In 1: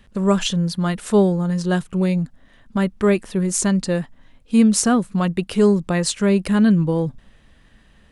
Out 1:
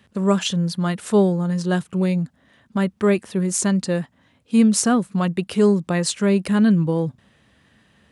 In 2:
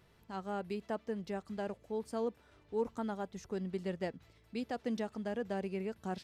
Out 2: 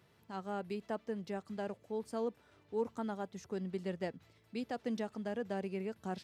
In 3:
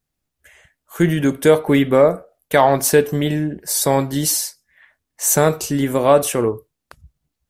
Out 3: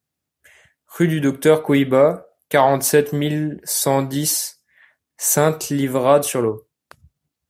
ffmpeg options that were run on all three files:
ffmpeg -i in.wav -af "highpass=frequency=80:width=0.5412,highpass=frequency=80:width=1.3066,volume=-1dB" out.wav

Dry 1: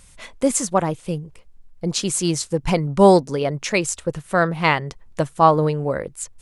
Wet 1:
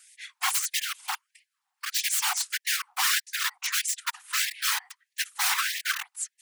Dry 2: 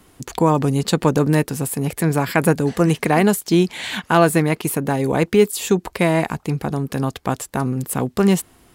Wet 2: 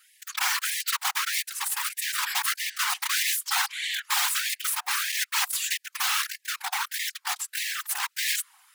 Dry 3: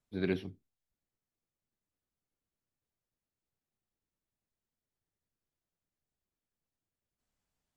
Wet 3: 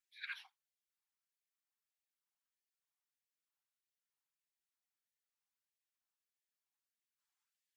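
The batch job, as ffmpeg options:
ffmpeg -i in.wav -af "aeval=exprs='(mod(6.68*val(0)+1,2)-1)/6.68':channel_layout=same,afftfilt=real='hypot(re,im)*cos(2*PI*random(0))':imag='hypot(re,im)*sin(2*PI*random(1))':win_size=512:overlap=0.75,afftfilt=real='re*gte(b*sr/1024,710*pow(1700/710,0.5+0.5*sin(2*PI*1.6*pts/sr)))':imag='im*gte(b*sr/1024,710*pow(1700/710,0.5+0.5*sin(2*PI*1.6*pts/sr)))':win_size=1024:overlap=0.75,volume=4dB" out.wav

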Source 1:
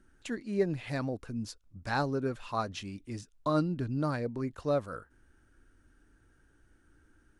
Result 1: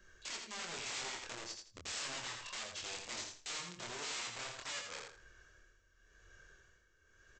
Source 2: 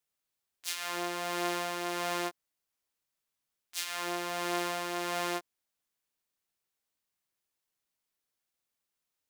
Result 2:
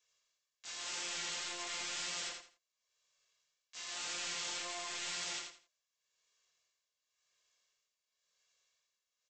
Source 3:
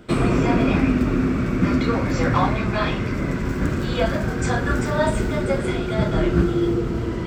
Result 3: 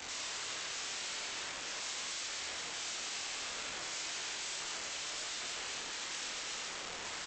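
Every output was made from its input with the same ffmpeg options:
ffmpeg -i in.wav -filter_complex "[0:a]tremolo=f=0.94:d=0.75,aecho=1:1:1.8:0.89,acrossover=split=460[link_01][link_02];[link_02]acompressor=threshold=-23dB:ratio=6[link_03];[link_01][link_03]amix=inputs=2:normalize=0,highshelf=frequency=5400:gain=2.5,acrossover=split=410|790[link_04][link_05][link_06];[link_04]asoftclip=type=tanh:threshold=-26.5dB[link_07];[link_07][link_05][link_06]amix=inputs=3:normalize=0,acompressor=threshold=-46dB:ratio=3,aresample=16000,aeval=exprs='(mod(168*val(0)+1,2)-1)/168':channel_layout=same,aresample=44100,flanger=delay=22.5:depth=2.9:speed=1.9,bass=frequency=250:gain=-8,treble=frequency=4000:gain=-7,aecho=1:1:83|166|249:0.562|0.141|0.0351,crystalizer=i=5:c=0,volume=4.5dB" out.wav

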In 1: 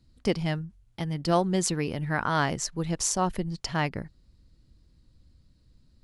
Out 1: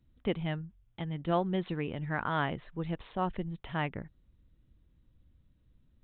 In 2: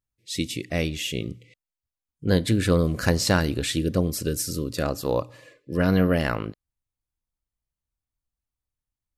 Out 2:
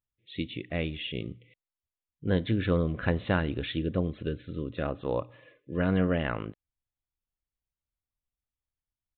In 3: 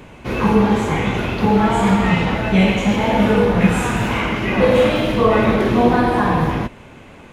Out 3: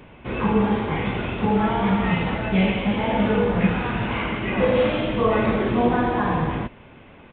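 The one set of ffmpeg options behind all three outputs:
ffmpeg -i in.wav -af "aresample=8000,aresample=44100,volume=-5.5dB" out.wav

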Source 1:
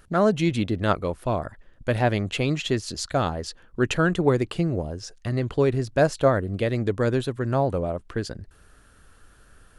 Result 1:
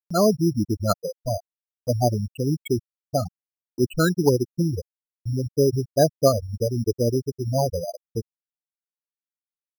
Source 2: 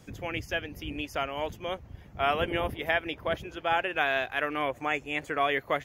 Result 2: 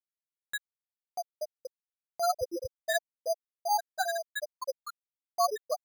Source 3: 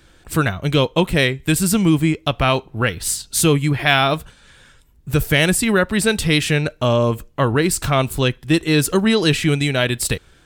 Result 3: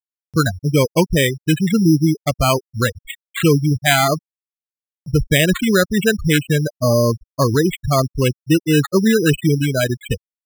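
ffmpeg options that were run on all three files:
ffmpeg -i in.wav -af "afftfilt=real='re*gte(hypot(re,im),0.316)':imag='im*gte(hypot(re,im),0.316)':win_size=1024:overlap=0.75,acrusher=samples=8:mix=1:aa=0.000001,acompressor=mode=upward:threshold=-33dB:ratio=2.5,volume=2dB" out.wav

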